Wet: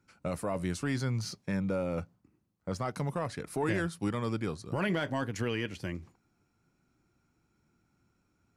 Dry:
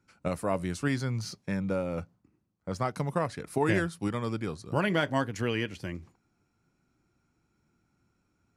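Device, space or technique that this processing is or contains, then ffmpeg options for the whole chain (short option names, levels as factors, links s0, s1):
soft clipper into limiter: -af "asoftclip=type=tanh:threshold=0.211,alimiter=limit=0.0794:level=0:latency=1:release=12"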